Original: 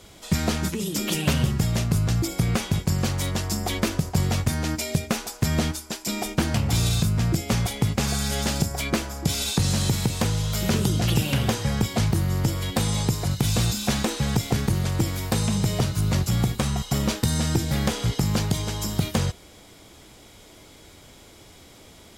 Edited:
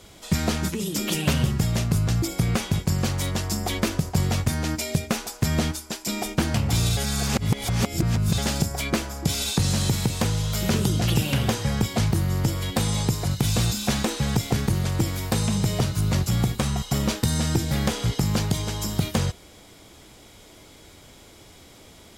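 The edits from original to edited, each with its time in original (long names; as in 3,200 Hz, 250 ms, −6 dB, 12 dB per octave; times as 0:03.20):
0:06.97–0:08.38: reverse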